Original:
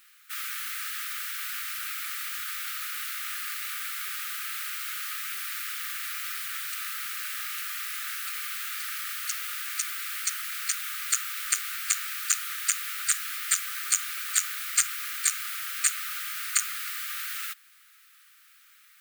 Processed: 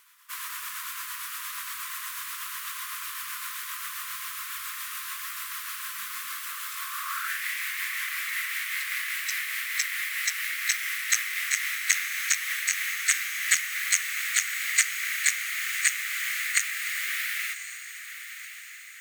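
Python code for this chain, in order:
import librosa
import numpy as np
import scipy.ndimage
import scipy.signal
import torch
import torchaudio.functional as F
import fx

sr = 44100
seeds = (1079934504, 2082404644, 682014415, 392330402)

y = fx.pitch_glide(x, sr, semitones=-3.5, runs='ending unshifted')
y = fx.filter_sweep_highpass(y, sr, from_hz=65.0, to_hz=2000.0, start_s=5.55, end_s=7.42, q=4.5)
y = fx.echo_diffused(y, sr, ms=1077, feedback_pct=45, wet_db=-11.5)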